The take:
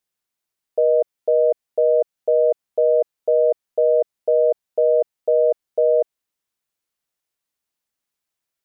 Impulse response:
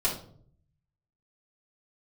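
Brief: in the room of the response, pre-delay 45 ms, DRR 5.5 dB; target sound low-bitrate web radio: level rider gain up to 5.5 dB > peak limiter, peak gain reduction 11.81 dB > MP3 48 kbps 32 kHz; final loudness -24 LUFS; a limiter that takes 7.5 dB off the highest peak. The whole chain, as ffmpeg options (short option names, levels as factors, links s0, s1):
-filter_complex "[0:a]alimiter=limit=0.141:level=0:latency=1,asplit=2[s0][s1];[1:a]atrim=start_sample=2205,adelay=45[s2];[s1][s2]afir=irnorm=-1:irlink=0,volume=0.188[s3];[s0][s3]amix=inputs=2:normalize=0,dynaudnorm=m=1.88,alimiter=level_in=1.68:limit=0.0631:level=0:latency=1,volume=0.596,volume=4.22" -ar 32000 -c:a libmp3lame -b:a 48k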